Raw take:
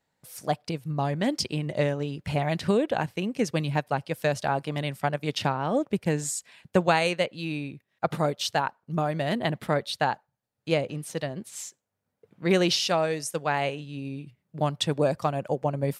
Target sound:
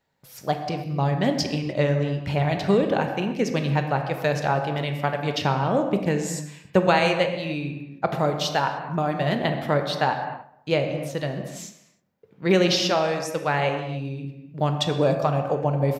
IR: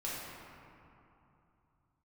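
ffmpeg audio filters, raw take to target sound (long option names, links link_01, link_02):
-filter_complex "[0:a]equalizer=frequency=9300:width=2.2:gain=-12.5,asplit=2[link_01][link_02];[link_02]adelay=129,lowpass=frequency=2000:poles=1,volume=-19dB,asplit=2[link_03][link_04];[link_04]adelay=129,lowpass=frequency=2000:poles=1,volume=0.46,asplit=2[link_05][link_06];[link_06]adelay=129,lowpass=frequency=2000:poles=1,volume=0.46,asplit=2[link_07][link_08];[link_08]adelay=129,lowpass=frequency=2000:poles=1,volume=0.46[link_09];[link_01][link_03][link_05][link_07][link_09]amix=inputs=5:normalize=0,asplit=2[link_10][link_11];[1:a]atrim=start_sample=2205,afade=type=out:start_time=0.36:duration=0.01,atrim=end_sample=16317[link_12];[link_11][link_12]afir=irnorm=-1:irlink=0,volume=-4.5dB[link_13];[link_10][link_13]amix=inputs=2:normalize=0"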